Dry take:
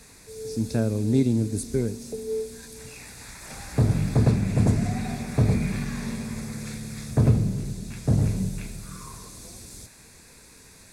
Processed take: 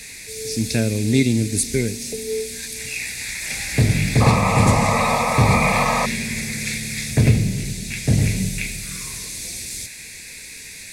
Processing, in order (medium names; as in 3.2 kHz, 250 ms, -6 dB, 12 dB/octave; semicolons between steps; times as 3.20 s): resonant high shelf 1.6 kHz +9.5 dB, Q 3; painted sound noise, 4.20–6.06 s, 450–1300 Hz -25 dBFS; trim +4 dB